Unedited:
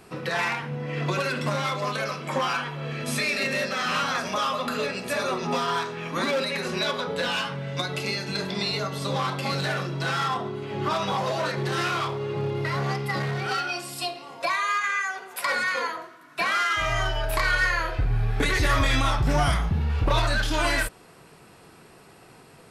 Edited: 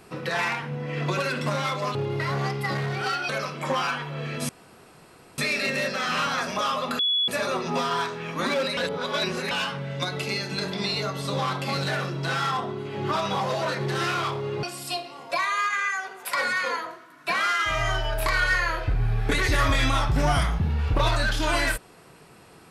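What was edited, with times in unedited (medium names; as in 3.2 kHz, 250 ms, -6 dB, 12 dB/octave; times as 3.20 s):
3.15 s: insert room tone 0.89 s
4.76–5.05 s: bleep 3.39 kHz -20 dBFS
6.54–7.28 s: reverse
12.40–13.74 s: move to 1.95 s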